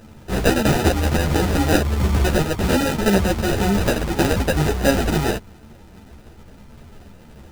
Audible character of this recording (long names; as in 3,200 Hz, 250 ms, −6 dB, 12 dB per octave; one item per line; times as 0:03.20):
aliases and images of a low sample rate 1,100 Hz, jitter 0%
a shimmering, thickened sound